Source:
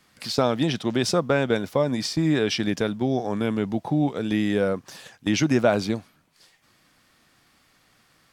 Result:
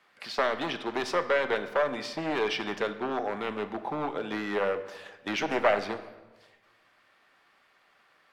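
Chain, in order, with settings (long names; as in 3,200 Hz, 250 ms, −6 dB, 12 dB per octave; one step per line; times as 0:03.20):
wavefolder on the positive side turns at −18 dBFS
three-way crossover with the lows and the highs turned down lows −19 dB, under 390 Hz, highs −16 dB, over 3,200 Hz
on a send: convolution reverb RT60 1.2 s, pre-delay 5 ms, DRR 8.5 dB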